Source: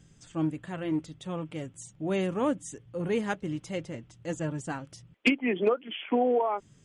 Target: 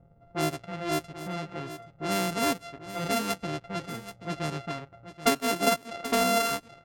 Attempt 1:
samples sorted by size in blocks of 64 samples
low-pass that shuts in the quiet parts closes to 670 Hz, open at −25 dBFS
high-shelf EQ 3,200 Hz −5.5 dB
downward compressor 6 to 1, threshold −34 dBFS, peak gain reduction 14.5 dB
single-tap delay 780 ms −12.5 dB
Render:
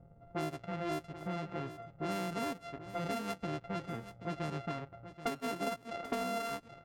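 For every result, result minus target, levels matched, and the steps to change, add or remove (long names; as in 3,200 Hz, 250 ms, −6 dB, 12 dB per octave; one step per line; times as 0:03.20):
downward compressor: peak gain reduction +14.5 dB; 8,000 Hz band −7.5 dB
remove: downward compressor 6 to 1, threshold −34 dBFS, peak gain reduction 14.5 dB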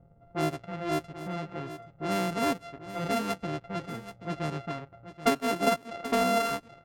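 8,000 Hz band −6.0 dB
change: high-shelf EQ 3,200 Hz +3 dB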